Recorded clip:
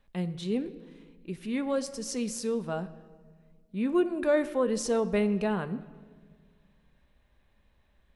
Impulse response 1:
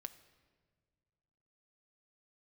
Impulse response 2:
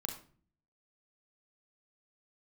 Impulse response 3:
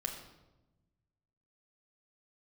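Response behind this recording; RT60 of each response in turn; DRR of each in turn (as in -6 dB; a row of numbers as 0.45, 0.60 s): 1; not exponential, 0.45 s, 1.0 s; 10.0, 3.0, 1.5 dB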